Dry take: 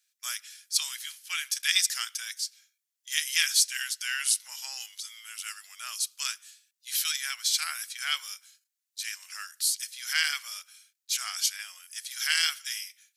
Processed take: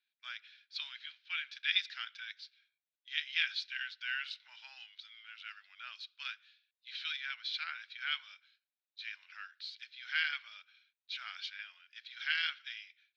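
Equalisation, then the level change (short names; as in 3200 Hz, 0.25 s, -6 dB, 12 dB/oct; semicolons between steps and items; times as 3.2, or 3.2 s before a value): air absorption 330 m; speaker cabinet 420–4100 Hz, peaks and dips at 610 Hz +9 dB, 870 Hz +6 dB, 1500 Hz +9 dB, 2400 Hz +6 dB, 3800 Hz +8 dB; differentiator; +3.0 dB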